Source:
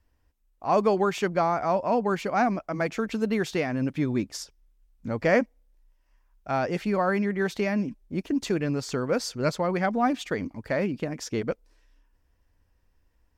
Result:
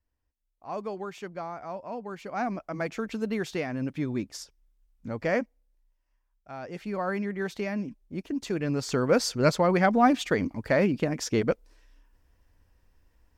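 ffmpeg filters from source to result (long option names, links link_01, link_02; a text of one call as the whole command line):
ffmpeg -i in.wav -af "volume=13.5dB,afade=type=in:start_time=2.16:duration=0.46:silence=0.375837,afade=type=out:start_time=5.07:duration=1.49:silence=0.316228,afade=type=in:start_time=6.56:duration=0.53:silence=0.354813,afade=type=in:start_time=8.47:duration=0.64:silence=0.375837" out.wav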